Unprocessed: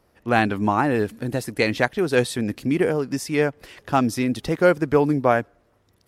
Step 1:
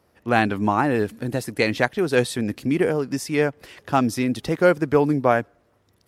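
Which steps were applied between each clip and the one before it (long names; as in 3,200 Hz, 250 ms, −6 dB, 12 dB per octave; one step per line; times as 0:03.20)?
high-pass filter 55 Hz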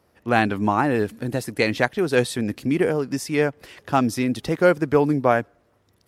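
no processing that can be heard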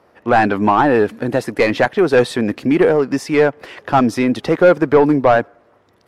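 mid-hump overdrive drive 19 dB, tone 1,000 Hz, clips at −2.5 dBFS
level +3 dB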